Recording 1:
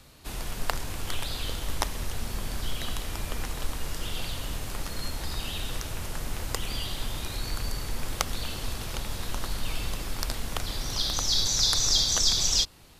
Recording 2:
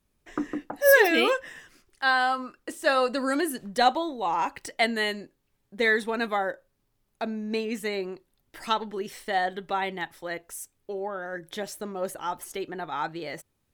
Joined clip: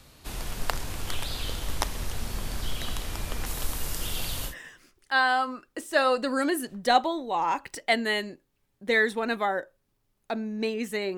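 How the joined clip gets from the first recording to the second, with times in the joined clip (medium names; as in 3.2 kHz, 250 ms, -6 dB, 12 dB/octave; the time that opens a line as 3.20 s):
recording 1
3.46–4.55 s: treble shelf 8.3 kHz +11.5 dB
4.50 s: go over to recording 2 from 1.41 s, crossfade 0.10 s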